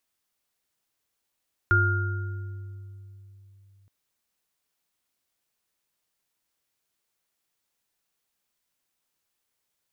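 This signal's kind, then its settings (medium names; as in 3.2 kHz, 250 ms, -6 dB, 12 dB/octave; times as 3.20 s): sine partials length 2.17 s, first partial 98.5 Hz, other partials 354/1410 Hz, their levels -9/3 dB, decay 3.56 s, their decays 2.13/1.30 s, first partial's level -20 dB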